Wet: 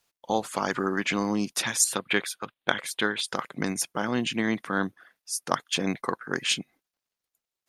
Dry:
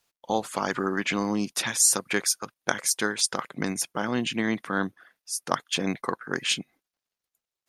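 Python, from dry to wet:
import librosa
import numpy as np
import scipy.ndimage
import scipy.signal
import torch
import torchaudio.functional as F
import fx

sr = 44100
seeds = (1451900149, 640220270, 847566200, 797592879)

y = fx.high_shelf_res(x, sr, hz=4400.0, db=-8.5, q=3.0, at=(1.84, 3.28))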